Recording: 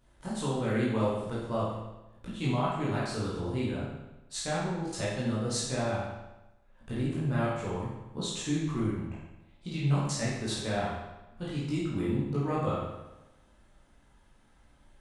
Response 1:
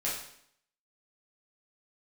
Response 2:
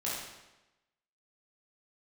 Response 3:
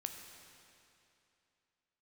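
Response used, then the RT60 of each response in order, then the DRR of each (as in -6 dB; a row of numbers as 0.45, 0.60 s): 2; 0.65, 1.0, 2.8 s; -7.5, -8.0, 4.5 dB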